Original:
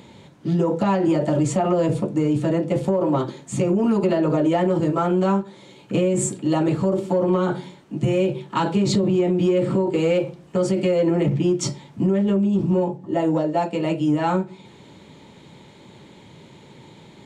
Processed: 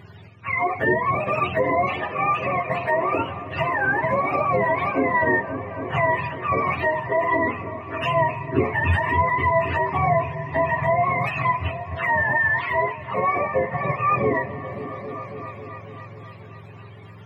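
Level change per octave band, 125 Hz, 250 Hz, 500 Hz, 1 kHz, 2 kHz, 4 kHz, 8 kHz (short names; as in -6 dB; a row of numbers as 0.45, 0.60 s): -4.0 dB, -11.0 dB, -2.5 dB, +7.0 dB, +15.0 dB, -4.5 dB, under -25 dB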